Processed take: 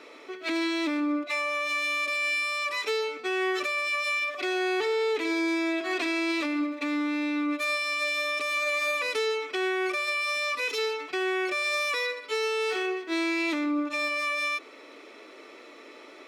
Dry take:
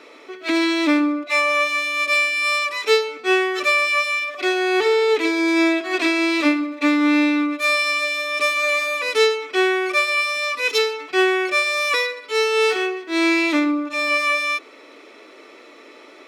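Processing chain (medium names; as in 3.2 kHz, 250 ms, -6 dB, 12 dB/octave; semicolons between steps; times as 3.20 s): peak limiter -17.5 dBFS, peak gain reduction 12 dB; trim -3.5 dB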